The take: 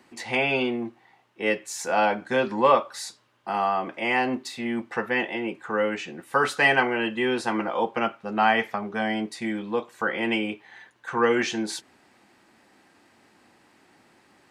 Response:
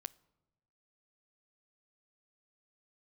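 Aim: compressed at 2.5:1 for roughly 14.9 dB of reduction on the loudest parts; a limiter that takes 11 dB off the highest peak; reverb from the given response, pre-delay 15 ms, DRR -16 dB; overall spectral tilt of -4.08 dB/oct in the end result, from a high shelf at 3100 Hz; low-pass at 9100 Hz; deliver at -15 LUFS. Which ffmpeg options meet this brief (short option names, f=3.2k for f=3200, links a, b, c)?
-filter_complex "[0:a]lowpass=9.1k,highshelf=f=3.1k:g=-5,acompressor=threshold=-38dB:ratio=2.5,alimiter=level_in=7dB:limit=-24dB:level=0:latency=1,volume=-7dB,asplit=2[a][b];[1:a]atrim=start_sample=2205,adelay=15[c];[b][c]afir=irnorm=-1:irlink=0,volume=20dB[d];[a][d]amix=inputs=2:normalize=0,volume=10dB"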